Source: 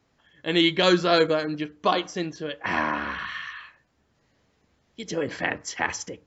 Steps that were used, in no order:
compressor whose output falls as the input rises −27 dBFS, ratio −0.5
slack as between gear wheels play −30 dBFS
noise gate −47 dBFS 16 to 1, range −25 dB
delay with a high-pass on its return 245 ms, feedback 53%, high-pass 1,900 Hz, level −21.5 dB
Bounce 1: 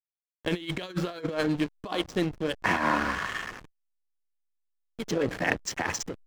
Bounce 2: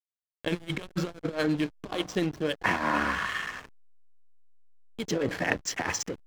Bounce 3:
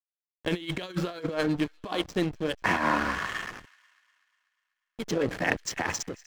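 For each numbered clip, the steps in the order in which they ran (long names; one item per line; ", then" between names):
delay with a high-pass on its return, then slack as between gear wheels, then compressor whose output falls as the input rises, then noise gate
delay with a high-pass on its return, then compressor whose output falls as the input rises, then noise gate, then slack as between gear wheels
slack as between gear wheels, then compressor whose output falls as the input rises, then noise gate, then delay with a high-pass on its return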